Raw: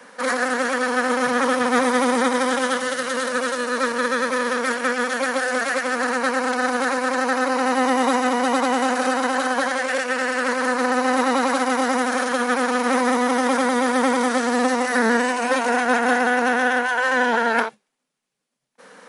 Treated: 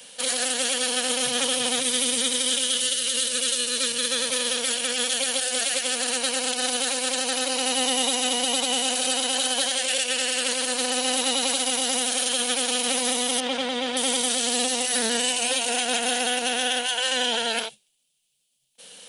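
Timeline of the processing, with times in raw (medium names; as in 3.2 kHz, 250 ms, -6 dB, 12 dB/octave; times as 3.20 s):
1.80–4.11 s: peaking EQ 790 Hz -10 dB 0.86 oct
13.40–13.97 s: low-pass 3.1 kHz
whole clip: FFT filter 110 Hz 0 dB, 230 Hz -12 dB, 690 Hz -6 dB, 1.1 kHz -16 dB, 2 kHz -8 dB, 3 kHz +13 dB, 5.4 kHz +6 dB, 8.8 kHz +13 dB; peak limiter -13 dBFS; bass shelf 150 Hz +6.5 dB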